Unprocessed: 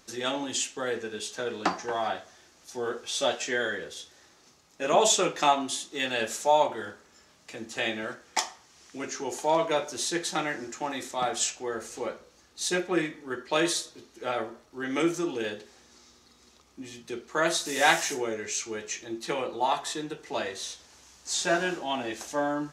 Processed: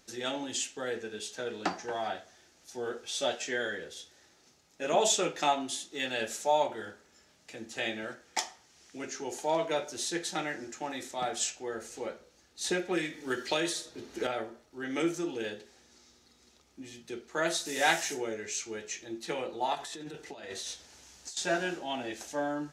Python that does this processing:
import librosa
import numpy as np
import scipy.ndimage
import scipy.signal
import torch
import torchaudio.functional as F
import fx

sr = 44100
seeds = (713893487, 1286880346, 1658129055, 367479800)

y = fx.band_squash(x, sr, depth_pct=100, at=(12.64, 14.27))
y = fx.over_compress(y, sr, threshold_db=-38.0, ratio=-1.0, at=(19.75, 21.37))
y = fx.peak_eq(y, sr, hz=1100.0, db=-8.0, octaves=0.27)
y = y * librosa.db_to_amplitude(-4.0)